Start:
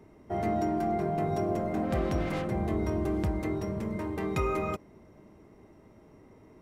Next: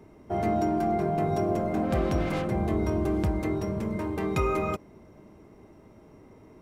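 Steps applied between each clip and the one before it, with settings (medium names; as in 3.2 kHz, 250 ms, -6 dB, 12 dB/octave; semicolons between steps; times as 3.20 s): band-stop 1.9 kHz, Q 16; trim +3 dB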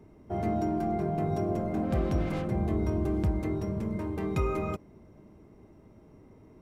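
bass shelf 330 Hz +7 dB; trim -6.5 dB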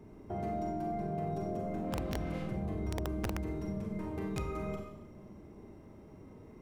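Schroeder reverb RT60 0.62 s, combs from 30 ms, DRR 1.5 dB; integer overflow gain 16 dB; compression 2:1, threshold -41 dBFS, peak gain reduction 11 dB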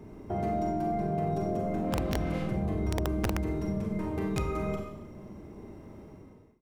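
fade out at the end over 0.61 s; trim +6 dB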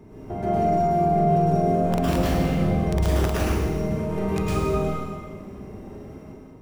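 plate-style reverb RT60 1.3 s, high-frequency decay 1×, pre-delay 95 ms, DRR -7.5 dB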